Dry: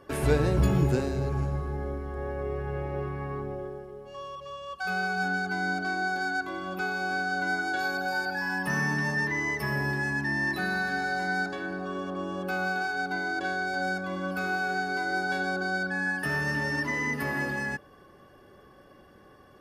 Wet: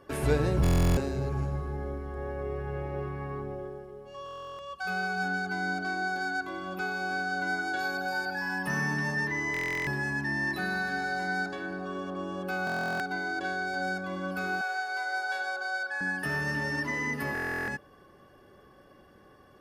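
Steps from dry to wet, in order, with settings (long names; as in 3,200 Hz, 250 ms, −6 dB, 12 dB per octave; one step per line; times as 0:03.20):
0:14.61–0:16.01: high-pass filter 560 Hz 24 dB per octave
buffer that repeats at 0:00.62/0:04.24/0:09.52/0:12.65/0:17.33, samples 1,024, times 14
level −2 dB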